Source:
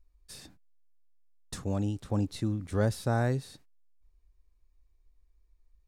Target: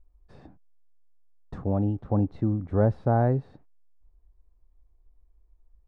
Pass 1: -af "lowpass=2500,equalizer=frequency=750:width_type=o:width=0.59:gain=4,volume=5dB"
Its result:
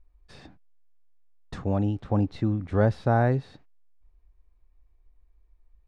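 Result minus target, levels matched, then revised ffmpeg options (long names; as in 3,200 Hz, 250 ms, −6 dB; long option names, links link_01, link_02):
2,000 Hz band +7.5 dB
-af "lowpass=1000,equalizer=frequency=750:width_type=o:width=0.59:gain=4,volume=5dB"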